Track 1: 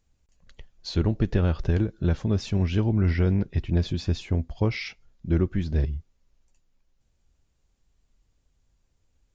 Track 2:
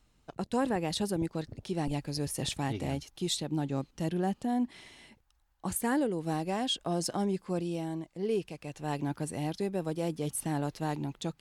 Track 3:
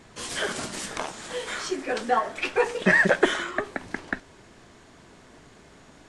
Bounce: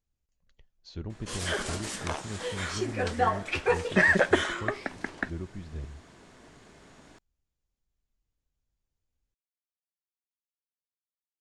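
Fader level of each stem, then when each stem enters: -14.5 dB, off, -2.5 dB; 0.00 s, off, 1.10 s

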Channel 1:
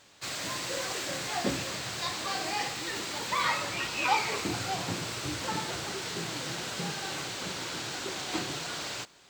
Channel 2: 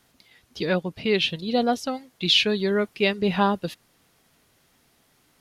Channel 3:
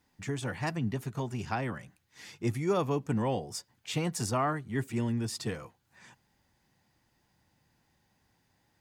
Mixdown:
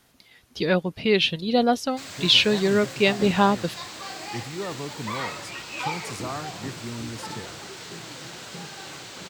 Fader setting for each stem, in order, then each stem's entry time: -3.5, +2.0, -4.5 dB; 1.75, 0.00, 1.90 s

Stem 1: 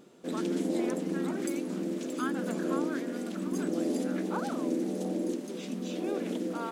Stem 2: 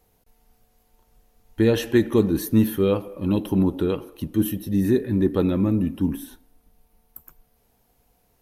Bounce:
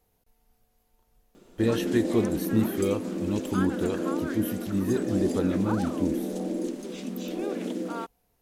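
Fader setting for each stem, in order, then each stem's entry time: +1.5, -6.5 dB; 1.35, 0.00 s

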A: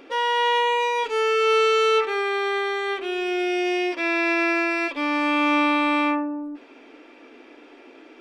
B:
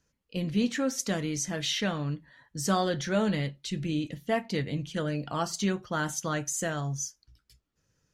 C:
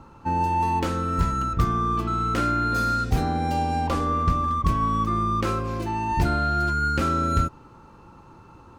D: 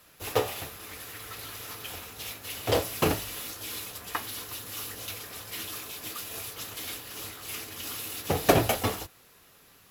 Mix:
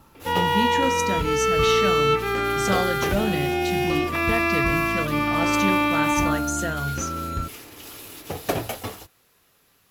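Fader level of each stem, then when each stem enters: -1.0, +1.5, -6.5, -4.5 dB; 0.15, 0.00, 0.00, 0.00 s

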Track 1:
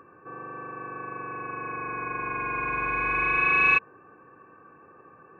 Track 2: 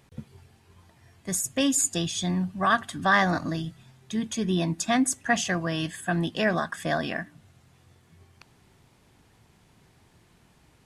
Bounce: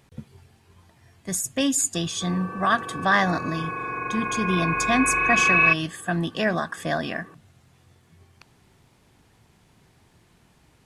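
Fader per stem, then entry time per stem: +2.5, +1.0 dB; 1.95, 0.00 s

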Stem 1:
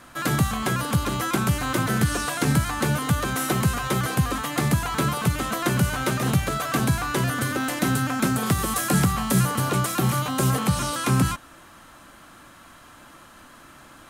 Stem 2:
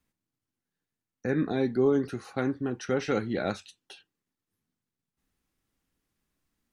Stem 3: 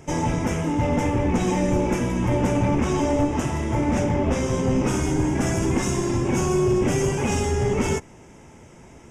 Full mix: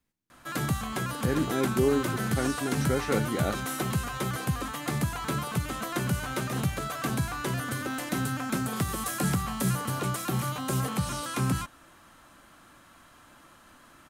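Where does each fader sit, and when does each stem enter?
-7.0 dB, -1.0 dB, off; 0.30 s, 0.00 s, off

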